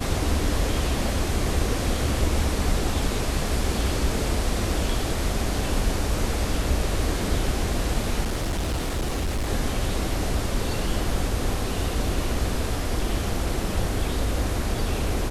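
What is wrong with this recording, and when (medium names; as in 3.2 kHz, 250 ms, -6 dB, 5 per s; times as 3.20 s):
8.24–9.49 s: clipped -22 dBFS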